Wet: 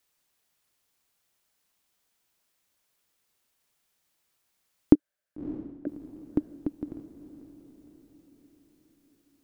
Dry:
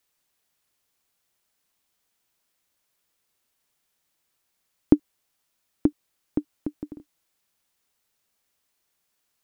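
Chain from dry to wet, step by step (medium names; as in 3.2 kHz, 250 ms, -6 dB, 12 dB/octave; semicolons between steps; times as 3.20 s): 4.95–5.87 s: two resonant band-passes 970 Hz, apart 1.4 oct; echo that smears into a reverb 599 ms, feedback 48%, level -14.5 dB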